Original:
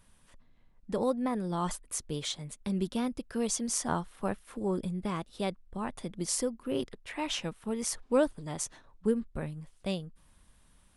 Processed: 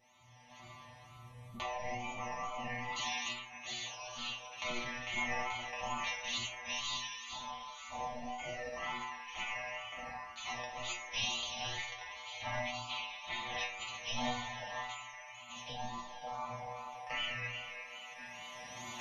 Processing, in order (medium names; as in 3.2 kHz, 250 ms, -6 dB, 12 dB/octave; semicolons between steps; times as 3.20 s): spectral sustain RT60 1.41 s; recorder AGC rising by 21 dB/s; spectral gate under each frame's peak -20 dB weak; static phaser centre 2.6 kHz, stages 6; speed mistake 78 rpm record played at 45 rpm; wow and flutter 140 cents; inharmonic resonator 120 Hz, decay 0.5 s, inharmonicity 0.002; trim +16.5 dB